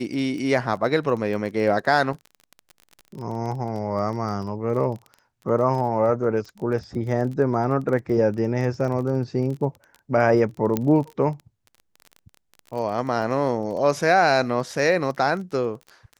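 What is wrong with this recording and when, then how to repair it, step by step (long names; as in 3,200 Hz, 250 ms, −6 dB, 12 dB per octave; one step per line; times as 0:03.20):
surface crackle 20 per second −31 dBFS
0:10.77: click −9 dBFS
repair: click removal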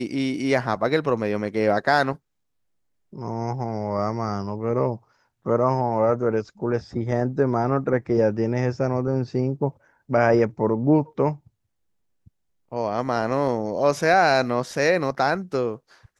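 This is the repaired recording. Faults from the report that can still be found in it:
none of them is left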